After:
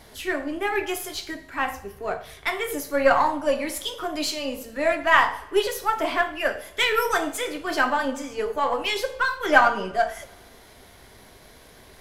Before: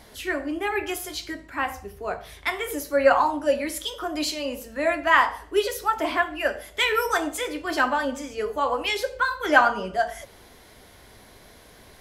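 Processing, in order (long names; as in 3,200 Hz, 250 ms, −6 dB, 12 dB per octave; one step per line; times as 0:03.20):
gain on one half-wave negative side −3 dB
coupled-rooms reverb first 0.44 s, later 2 s, DRR 9.5 dB
level +1.5 dB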